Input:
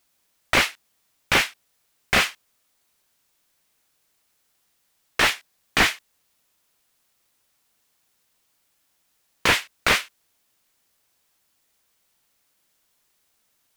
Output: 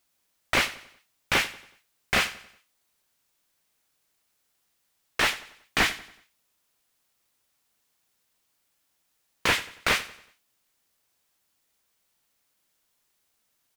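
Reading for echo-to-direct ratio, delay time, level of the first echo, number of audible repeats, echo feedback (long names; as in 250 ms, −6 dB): −16.5 dB, 93 ms, −17.5 dB, 3, 43%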